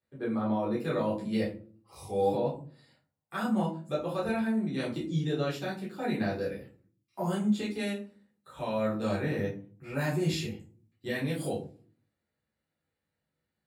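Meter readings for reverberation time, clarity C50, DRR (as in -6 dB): 0.45 s, 8.0 dB, -6.5 dB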